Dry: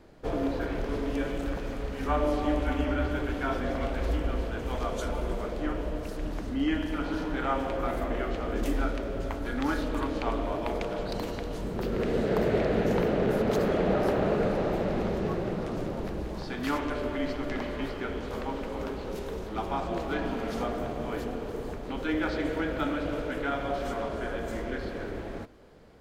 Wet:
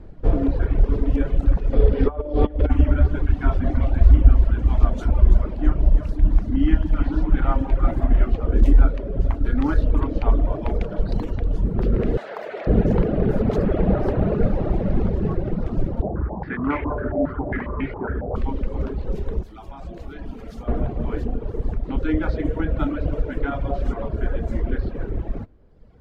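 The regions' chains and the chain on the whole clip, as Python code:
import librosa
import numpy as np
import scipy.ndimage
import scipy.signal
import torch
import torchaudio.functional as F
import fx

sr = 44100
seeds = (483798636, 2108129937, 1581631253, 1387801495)

y = fx.chain(x, sr, fx.over_compress(threshold_db=-30.0, ratio=-0.5),
    fx.small_body(hz=(460.0, 3400.0), ring_ms=20, db=11),
    fx.resample_bad(factor=4, down='none', up='filtered'), at=(1.73, 2.7))
y = fx.chain(y, sr, fx.peak_eq(hz=470.0, db=-10.0, octaves=0.37),
    fx.echo_alternate(ms=165, hz=1000.0, feedback_pct=69, wet_db=-6), at=(3.22, 8.37))
y = fx.chain(y, sr, fx.highpass(hz=760.0, slope=12),
    fx.env_flatten(amount_pct=50), at=(12.17, 12.67))
y = fx.chain(y, sr, fx.highpass(hz=57.0, slope=12),
    fx.filter_held_lowpass(hz=7.3, low_hz=700.0, high_hz=2200.0), at=(16.02, 18.36))
y = fx.chain(y, sr, fx.pre_emphasis(coefficient=0.8),
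    fx.env_flatten(amount_pct=70), at=(19.43, 20.68))
y = fx.riaa(y, sr, side='playback')
y = fx.dereverb_blind(y, sr, rt60_s=1.5)
y = y * 10.0 ** (2.5 / 20.0)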